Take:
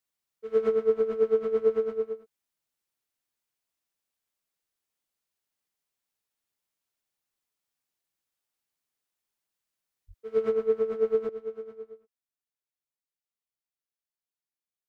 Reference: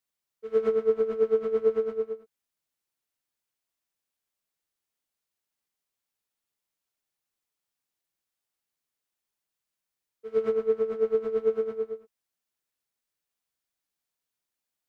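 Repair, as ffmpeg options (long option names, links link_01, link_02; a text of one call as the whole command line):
ffmpeg -i in.wav -filter_complex "[0:a]asplit=3[link_01][link_02][link_03];[link_01]afade=type=out:start_time=10.07:duration=0.02[link_04];[link_02]highpass=frequency=140:width=0.5412,highpass=frequency=140:width=1.3066,afade=type=in:start_time=10.07:duration=0.02,afade=type=out:start_time=10.19:duration=0.02[link_05];[link_03]afade=type=in:start_time=10.19:duration=0.02[link_06];[link_04][link_05][link_06]amix=inputs=3:normalize=0,asetnsamples=nb_out_samples=441:pad=0,asendcmd='11.29 volume volume 11dB',volume=0dB" out.wav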